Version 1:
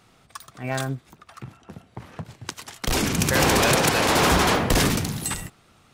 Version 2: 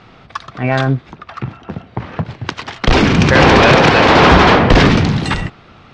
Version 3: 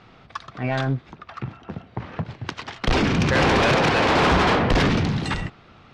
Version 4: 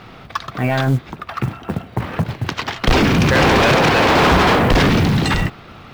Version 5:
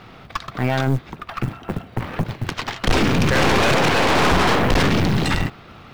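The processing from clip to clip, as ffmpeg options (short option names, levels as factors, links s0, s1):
-filter_complex "[0:a]lowpass=f=5300:w=0.5412,lowpass=f=5300:w=1.3066,bass=f=250:g=0,treble=f=4000:g=-9,asplit=2[s0][s1];[s1]alimiter=limit=0.0841:level=0:latency=1:release=26,volume=1.33[s2];[s0][s2]amix=inputs=2:normalize=0,volume=2.51"
-af "asoftclip=type=tanh:threshold=0.531,volume=0.422"
-af "acontrast=87,alimiter=limit=0.237:level=0:latency=1:release=22,acrusher=bits=7:mode=log:mix=0:aa=0.000001,volume=1.5"
-af "aeval=exprs='(tanh(5.01*val(0)+0.75)-tanh(0.75))/5.01':c=same,volume=1.12"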